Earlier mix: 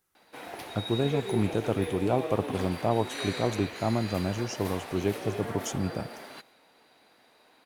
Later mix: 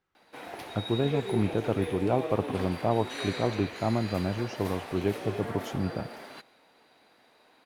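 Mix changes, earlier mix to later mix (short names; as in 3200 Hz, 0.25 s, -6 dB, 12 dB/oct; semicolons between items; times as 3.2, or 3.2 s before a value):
speech: add LPF 3600 Hz; master: add high shelf 6200 Hz -5 dB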